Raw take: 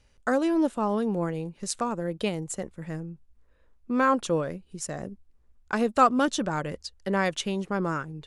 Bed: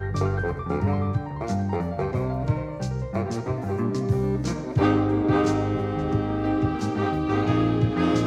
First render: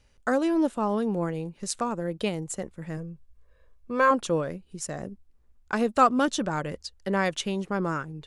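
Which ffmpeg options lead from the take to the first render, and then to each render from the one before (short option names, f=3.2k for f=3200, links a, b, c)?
-filter_complex "[0:a]asettb=1/sr,asplit=3[a][b][c];[a]atrim=end=2.974[d];[b]atrim=start=2.97:end=4.11,asetpts=PTS-STARTPTS,afade=t=in:d=0.004:c=qsin,afade=t=out:st=1.136:d=0.004:c=qsin,aecho=1:1:1.8:0.61,atrim=end_sample=50274[e];[c]atrim=start=4.106[f];[d][e]acrossfade=d=0.004:c1=hsin:c2=qsin[g];[g][f]acrossfade=d=0.004:c1=qsin:c2=hsin"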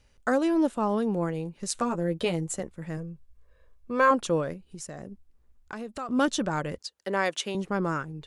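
-filter_complex "[0:a]asettb=1/sr,asplit=3[a][b][c];[a]atrim=end=1.744[d];[b]atrim=start=1.74:end=2.6,asetpts=PTS-STARTPTS,afade=t=in:d=0.004:c=qsin,afade=t=out:st=0.856:d=0.004:c=qsin,asplit=2[e][f];[f]adelay=12,volume=-4.5dB[g];[e][g]amix=inputs=2:normalize=0,atrim=end_sample=37926[h];[c]atrim=start=2.596[i];[d][h]acrossfade=d=0.004:c1=hsin:c2=qsin[j];[j][i]acrossfade=d=0.004:c1=qsin:c2=hsin,asettb=1/sr,asplit=3[k][l][m];[k]atrim=end=4.534[n];[l]atrim=start=4.53:end=6.09,asetpts=PTS-STARTPTS,afade=t=in:d=0.004:c=qsin,afade=t=out:st=1.556:d=0.004:c=qsin,acompressor=threshold=-37dB:ratio=3:attack=3.2:release=140:knee=1:detection=peak[o];[m]atrim=start=6.086[p];[n][o]acrossfade=d=0.004:c1=hsin:c2=qsin[q];[q][p]acrossfade=d=0.004:c1=qsin:c2=hsin,asettb=1/sr,asplit=3[r][s][t];[r]atrim=end=6.784[u];[s]atrim=start=6.78:end=7.55,asetpts=PTS-STARTPTS,afade=t=in:d=0.004:c=qsin,afade=t=out:st=0.766:d=0.004:c=qsin,highpass=300[v];[t]atrim=start=7.546[w];[u][v]acrossfade=d=0.004:c1=hsin:c2=qsin[x];[x][w]acrossfade=d=0.004:c1=qsin:c2=hsin"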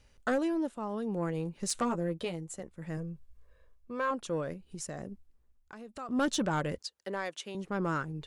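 -af "tremolo=f=0.61:d=0.69,asoftclip=type=tanh:threshold=-21.5dB"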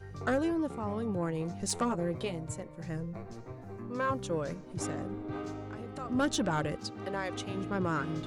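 -filter_complex "[1:a]volume=-17.5dB[a];[0:a][a]amix=inputs=2:normalize=0"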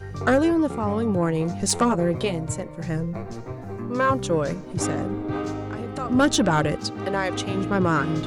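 -af "volume=10.5dB"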